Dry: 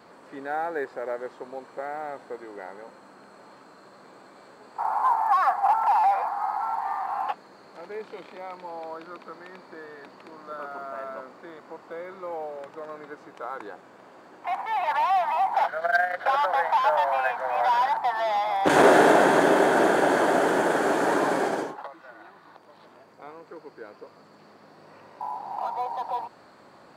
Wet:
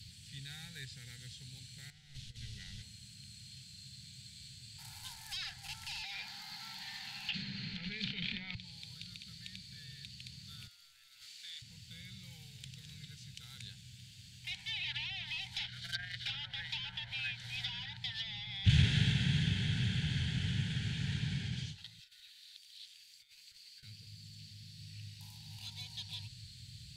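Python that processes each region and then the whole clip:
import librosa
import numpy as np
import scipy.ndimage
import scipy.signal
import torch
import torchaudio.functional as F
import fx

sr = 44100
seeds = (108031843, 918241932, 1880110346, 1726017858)

y = fx.chain(x, sr, fx.delta_hold(step_db=-52.0),
    fx.lowpass(hz=5400.0, slope=12),
    fx.over_compress(threshold_db=-38.0, ratio=-0.5), at=(1.9, 2.82))
y = fx.chain(y, sr, fx.highpass(hz=190.0, slope=24),
    fx.peak_eq(hz=9200.0, db=-11.0, octaves=1.1),
    fx.env_flatten(amount_pct=70), at=(6.02, 8.55))
y = fx.chain(y, sr, fx.highpass(hz=940.0, slope=12),
    fx.over_compress(threshold_db=-46.0, ratio=-1.0), at=(10.67, 11.62))
y = fx.chain(y, sr, fx.highpass(hz=1100.0, slope=12),
    fx.over_compress(threshold_db=-52.0, ratio=-0.5), at=(21.99, 23.83))
y = scipy.signal.sosfilt(scipy.signal.ellip(3, 1.0, 50, [110.0, 3300.0], 'bandstop', fs=sr, output='sos'), y)
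y = fx.env_lowpass_down(y, sr, base_hz=1900.0, full_db=-42.5)
y = fx.low_shelf(y, sr, hz=360.0, db=9.5)
y = F.gain(torch.from_numpy(y), 11.5).numpy()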